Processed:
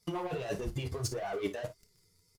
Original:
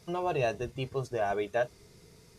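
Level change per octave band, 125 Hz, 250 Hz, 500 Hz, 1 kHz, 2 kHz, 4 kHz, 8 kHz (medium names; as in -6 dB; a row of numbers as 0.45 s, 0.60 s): 0.0 dB, -1.0 dB, -6.0 dB, -7.0 dB, -7.0 dB, +0.5 dB, +7.5 dB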